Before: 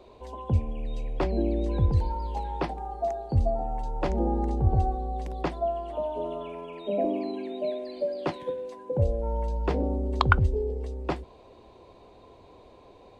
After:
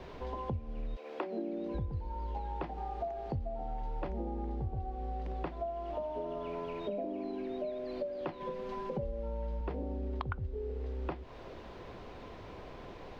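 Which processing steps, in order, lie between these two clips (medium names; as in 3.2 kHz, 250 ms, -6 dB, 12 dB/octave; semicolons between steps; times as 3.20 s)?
added noise pink -52 dBFS; 0.95–1.74 s: high-pass 420 Hz -> 120 Hz 24 dB/octave; 8.40–9.61 s: comb 5.1 ms, depth 94%; compression 8:1, threshold -37 dBFS, peak gain reduction 22.5 dB; distance through air 250 m; trim +3 dB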